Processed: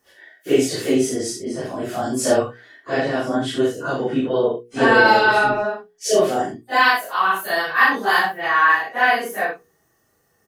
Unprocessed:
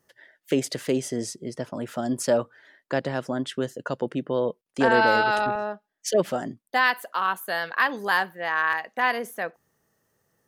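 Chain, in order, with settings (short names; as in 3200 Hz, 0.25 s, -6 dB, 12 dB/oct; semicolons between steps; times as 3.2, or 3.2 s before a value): phase scrambler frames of 0.1 s; notches 60/120/180/240/300/360/420/480 Hz; comb 2.7 ms, depth 36%; early reflections 39 ms -5 dB, 65 ms -8.5 dB; gain +5 dB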